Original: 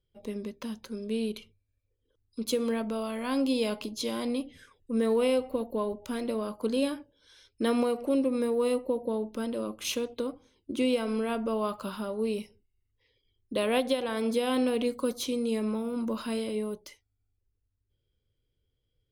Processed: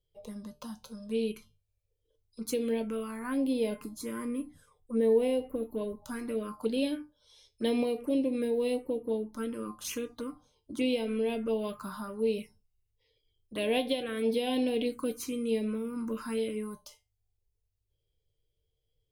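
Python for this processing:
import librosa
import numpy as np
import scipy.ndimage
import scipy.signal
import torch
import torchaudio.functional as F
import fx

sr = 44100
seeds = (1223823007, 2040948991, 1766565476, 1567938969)

y = fx.comb_fb(x, sr, f0_hz=150.0, decay_s=0.23, harmonics='all', damping=0.0, mix_pct=70)
y = fx.env_phaser(y, sr, low_hz=230.0, high_hz=1300.0, full_db=-31.5)
y = fx.band_shelf(y, sr, hz=3900.0, db=-8.5, octaves=1.7, at=(3.19, 5.63))
y = y * librosa.db_to_amplitude(7.0)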